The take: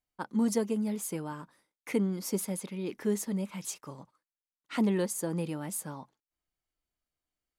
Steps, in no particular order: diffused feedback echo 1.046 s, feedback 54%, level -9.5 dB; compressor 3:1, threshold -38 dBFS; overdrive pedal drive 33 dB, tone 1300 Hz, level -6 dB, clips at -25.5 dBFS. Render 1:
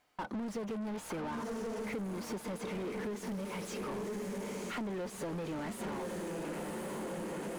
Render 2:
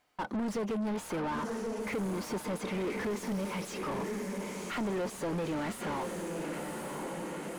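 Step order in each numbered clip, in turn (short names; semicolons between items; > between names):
diffused feedback echo > overdrive pedal > compressor; compressor > diffused feedback echo > overdrive pedal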